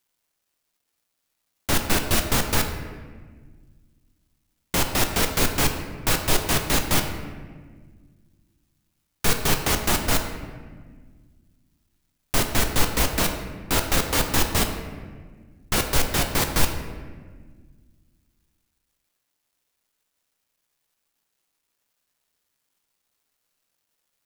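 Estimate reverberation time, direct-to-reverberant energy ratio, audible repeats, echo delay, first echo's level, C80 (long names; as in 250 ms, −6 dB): 1.5 s, 4.5 dB, no echo audible, no echo audible, no echo audible, 8.5 dB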